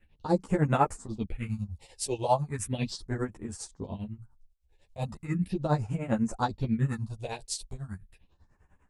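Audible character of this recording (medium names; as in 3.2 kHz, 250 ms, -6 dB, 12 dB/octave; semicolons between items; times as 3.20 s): phasing stages 4, 0.37 Hz, lowest notch 210–4100 Hz; tremolo triangle 10 Hz, depth 95%; a shimmering, thickened sound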